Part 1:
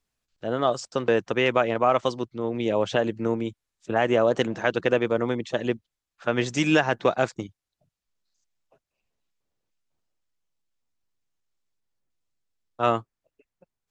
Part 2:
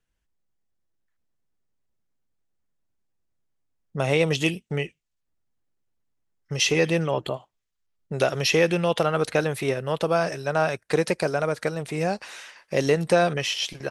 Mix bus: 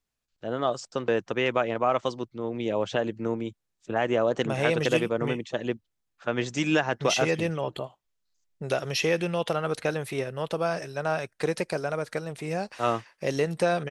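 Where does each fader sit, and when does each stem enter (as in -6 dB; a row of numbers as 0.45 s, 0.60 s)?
-3.5 dB, -5.0 dB; 0.00 s, 0.50 s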